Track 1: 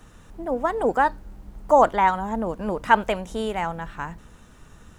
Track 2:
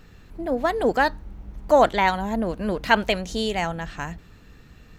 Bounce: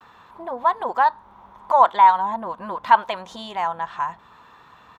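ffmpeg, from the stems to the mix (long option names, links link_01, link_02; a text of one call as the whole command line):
ffmpeg -i stem1.wav -i stem2.wav -filter_complex "[0:a]acompressor=threshold=-23dB:ratio=6,asoftclip=type=hard:threshold=-21.5dB,volume=-17dB,asplit=2[link_01][link_02];[1:a]highpass=frequency=1000:width_type=q:width=6.5,equalizer=frequency=3500:width_type=o:width=0.27:gain=10,adelay=6.3,volume=2.5dB[link_03];[link_02]apad=whole_len=219977[link_04];[link_03][link_04]sidechaincompress=threshold=-49dB:ratio=8:attack=8.9:release=492[link_05];[link_01][link_05]amix=inputs=2:normalize=0,agate=range=-33dB:threshold=-54dB:ratio=3:detection=peak,highpass=100,tiltshelf=frequency=1400:gain=9" out.wav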